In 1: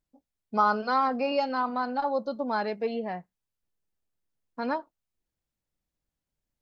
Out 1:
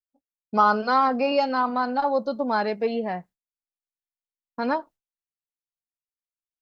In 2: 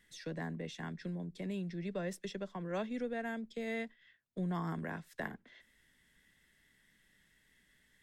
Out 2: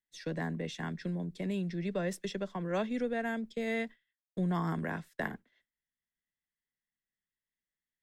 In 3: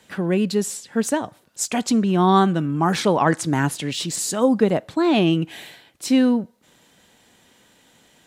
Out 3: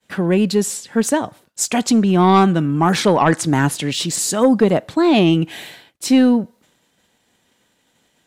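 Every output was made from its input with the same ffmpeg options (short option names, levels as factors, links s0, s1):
-af "aeval=exprs='0.708*sin(PI/2*1.41*val(0)/0.708)':c=same,agate=range=0.0224:threshold=0.01:ratio=3:detection=peak,volume=0.794"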